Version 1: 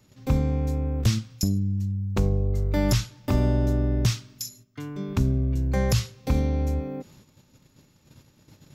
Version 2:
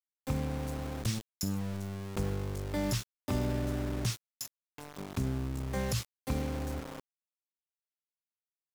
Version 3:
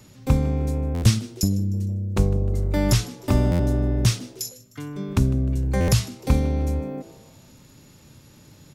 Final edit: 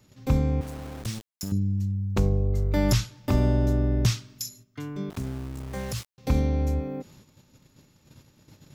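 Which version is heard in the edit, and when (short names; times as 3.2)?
1
0.61–1.52 from 2
5.1–6.18 from 2
not used: 3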